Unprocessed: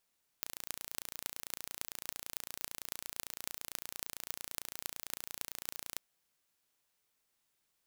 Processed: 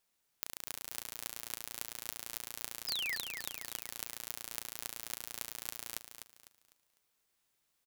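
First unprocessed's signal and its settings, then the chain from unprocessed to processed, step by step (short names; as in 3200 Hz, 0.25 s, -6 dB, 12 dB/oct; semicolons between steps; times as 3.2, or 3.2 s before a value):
pulse train 28.9/s, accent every 8, -8.5 dBFS 5.55 s
painted sound fall, 2.87–3.16, 1700–5300 Hz -37 dBFS; on a send: feedback echo 0.251 s, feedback 33%, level -8 dB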